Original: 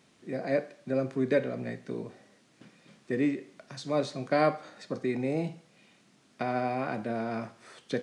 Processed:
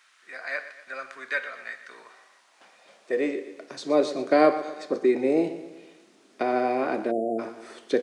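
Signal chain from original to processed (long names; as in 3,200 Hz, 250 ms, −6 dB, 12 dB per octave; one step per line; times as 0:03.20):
high-pass filter sweep 1,400 Hz → 350 Hz, 0:01.89–0:03.71
repeating echo 121 ms, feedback 52%, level −14 dB
time-frequency box erased 0:07.11–0:07.39, 770–6,800 Hz
level +3.5 dB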